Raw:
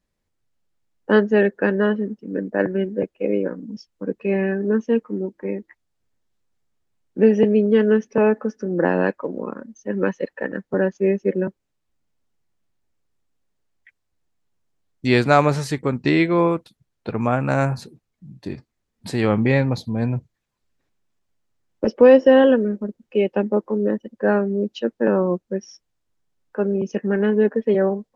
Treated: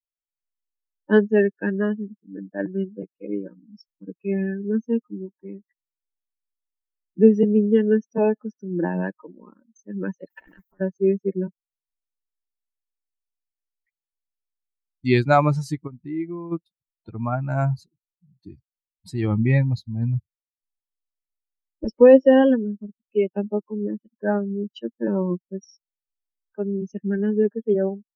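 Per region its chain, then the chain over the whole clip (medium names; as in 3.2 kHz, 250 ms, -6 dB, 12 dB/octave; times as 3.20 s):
10.30–10.81 s: high-pass 270 Hz 6 dB/octave + compressor with a negative ratio -34 dBFS + spectrum-flattening compressor 2:1
15.87–16.52 s: low-pass 1.7 kHz 6 dB/octave + compression 2:1, threshold -28 dBFS
whole clip: expander on every frequency bin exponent 2; tilt EQ -1.5 dB/octave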